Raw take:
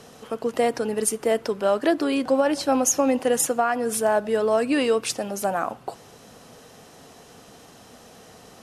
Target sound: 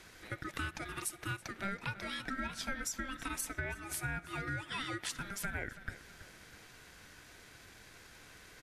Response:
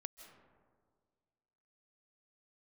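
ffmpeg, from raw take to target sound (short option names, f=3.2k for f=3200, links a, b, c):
-filter_complex "[0:a]highpass=f=710:w=0.5412,highpass=f=710:w=1.3066,equalizer=f=7.9k:t=o:w=2:g=-5.5,acompressor=threshold=-33dB:ratio=6,aeval=exprs='val(0)*sin(2*PI*790*n/s)':c=same,asplit=2[a][b];[b]adelay=328,lowpass=f=4.4k:p=1,volume=-15dB,asplit=2[c][d];[d]adelay=328,lowpass=f=4.4k:p=1,volume=0.5,asplit=2[e][f];[f]adelay=328,lowpass=f=4.4k:p=1,volume=0.5,asplit=2[g][h];[h]adelay=328,lowpass=f=4.4k:p=1,volume=0.5,asplit=2[i][j];[j]adelay=328,lowpass=f=4.4k:p=1,volume=0.5[k];[c][e][g][i][k]amix=inputs=5:normalize=0[l];[a][l]amix=inputs=2:normalize=0"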